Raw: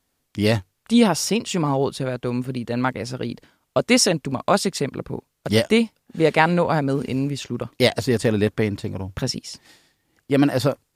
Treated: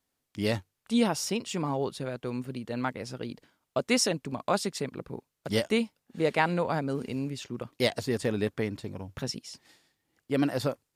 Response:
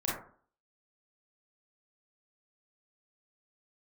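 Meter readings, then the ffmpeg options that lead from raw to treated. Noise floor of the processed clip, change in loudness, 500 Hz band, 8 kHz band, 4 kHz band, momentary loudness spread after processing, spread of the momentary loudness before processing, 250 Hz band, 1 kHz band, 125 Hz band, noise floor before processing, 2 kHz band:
−83 dBFS, −9.0 dB, −8.5 dB, −8.5 dB, −8.5 dB, 13 LU, 13 LU, −9.0 dB, −8.5 dB, −10.5 dB, −73 dBFS, −8.5 dB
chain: -af "lowshelf=frequency=79:gain=-7,volume=-8.5dB"

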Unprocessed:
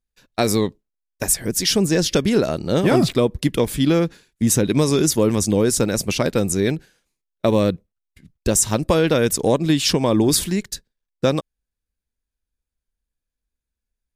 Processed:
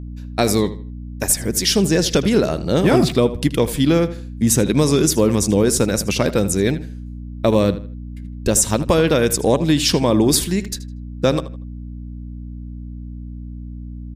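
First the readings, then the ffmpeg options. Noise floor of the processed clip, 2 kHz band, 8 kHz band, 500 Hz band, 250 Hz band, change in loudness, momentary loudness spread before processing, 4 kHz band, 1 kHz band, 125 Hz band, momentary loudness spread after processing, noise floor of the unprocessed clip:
−32 dBFS, +1.5 dB, +1.5 dB, +1.5 dB, +2.0 dB, +1.5 dB, 8 LU, +1.5 dB, +1.5 dB, +2.0 dB, 18 LU, −85 dBFS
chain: -filter_complex "[0:a]aeval=exprs='val(0)+0.0282*(sin(2*PI*60*n/s)+sin(2*PI*2*60*n/s)/2+sin(2*PI*3*60*n/s)/3+sin(2*PI*4*60*n/s)/4+sin(2*PI*5*60*n/s)/5)':channel_layout=same,asplit=2[link_01][link_02];[link_02]adelay=79,lowpass=frequency=4400:poles=1,volume=-14dB,asplit=2[link_03][link_04];[link_04]adelay=79,lowpass=frequency=4400:poles=1,volume=0.3,asplit=2[link_05][link_06];[link_06]adelay=79,lowpass=frequency=4400:poles=1,volume=0.3[link_07];[link_01][link_03][link_05][link_07]amix=inputs=4:normalize=0,volume=1.5dB"

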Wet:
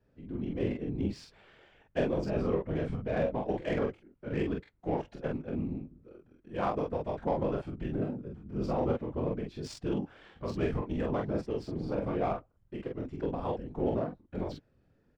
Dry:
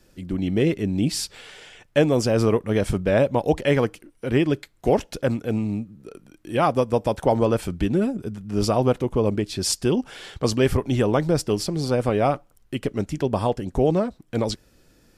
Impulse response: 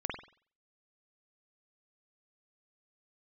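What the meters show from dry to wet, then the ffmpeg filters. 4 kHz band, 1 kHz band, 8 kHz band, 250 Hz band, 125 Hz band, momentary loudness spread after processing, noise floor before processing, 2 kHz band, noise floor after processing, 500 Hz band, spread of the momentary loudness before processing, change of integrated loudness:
−19.5 dB, −10.5 dB, below −25 dB, −10.5 dB, −11.5 dB, 9 LU, −59 dBFS, −12.5 dB, −70 dBFS, −11.0 dB, 8 LU, −11.0 dB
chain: -af "afftfilt=real='hypot(re,im)*cos(2*PI*random(0))':imag='hypot(re,im)*sin(2*PI*random(1))':win_size=512:overlap=0.75,adynamicsmooth=sensitivity=2:basefreq=2000,aecho=1:1:25|45:0.473|0.708,volume=-7dB"

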